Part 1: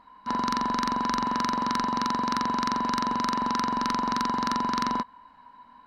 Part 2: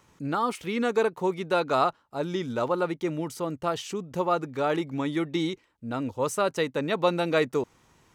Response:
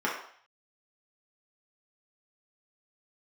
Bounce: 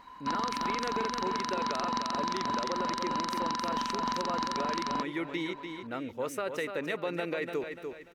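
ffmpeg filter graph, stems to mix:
-filter_complex "[0:a]lowpass=5800,aemphasis=mode=production:type=75fm,alimiter=limit=0.2:level=0:latency=1:release=184,volume=1.26[s0];[1:a]equalizer=f=125:t=o:w=1:g=-11,equalizer=f=250:t=o:w=1:g=-4,equalizer=f=1000:t=o:w=1:g=-7,equalizer=f=2000:t=o:w=1:g=6,equalizer=f=4000:t=o:w=1:g=-4,equalizer=f=8000:t=o:w=1:g=-9,alimiter=limit=0.0891:level=0:latency=1:release=23,volume=0.841,asplit=2[s1][s2];[s2]volume=0.398,aecho=0:1:293|586|879|1172|1465:1|0.37|0.137|0.0507|0.0187[s3];[s0][s1][s3]amix=inputs=3:normalize=0,acompressor=threshold=0.0398:ratio=6"

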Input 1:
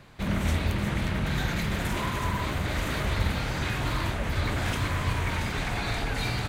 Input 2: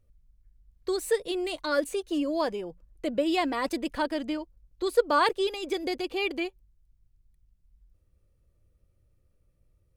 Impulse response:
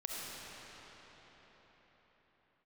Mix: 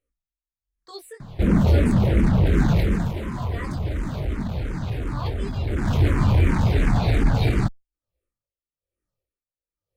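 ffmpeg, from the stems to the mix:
-filter_complex "[0:a]tiltshelf=f=700:g=8,aeval=exprs='0.447*sin(PI/2*3.16*val(0)/0.447)':c=same,adelay=1200,volume=1.88,afade=t=out:st=2.79:d=0.35:silence=0.354813,afade=t=in:st=5.64:d=0.43:silence=0.354813[s0];[1:a]bass=f=250:g=-14,treble=f=4000:g=-1,flanger=delay=17:depth=3.5:speed=0.38,aeval=exprs='val(0)*pow(10,-20*(0.5-0.5*cos(2*PI*1.1*n/s))/20)':c=same,volume=1.12[s1];[s0][s1]amix=inputs=2:normalize=0,asplit=2[s2][s3];[s3]afreqshift=-2.8[s4];[s2][s4]amix=inputs=2:normalize=1"

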